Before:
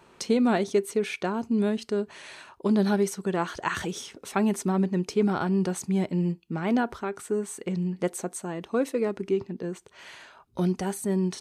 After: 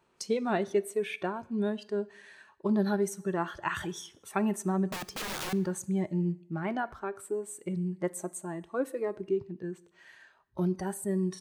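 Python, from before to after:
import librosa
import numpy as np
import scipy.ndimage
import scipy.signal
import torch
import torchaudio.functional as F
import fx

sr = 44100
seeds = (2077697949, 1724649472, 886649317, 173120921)

y = fx.noise_reduce_blind(x, sr, reduce_db=11)
y = fx.overflow_wrap(y, sr, gain_db=27.5, at=(4.88, 5.53))
y = fx.rev_double_slope(y, sr, seeds[0], early_s=0.75, late_s=2.1, knee_db=-28, drr_db=17.5)
y = y * 10.0 ** (-3.5 / 20.0)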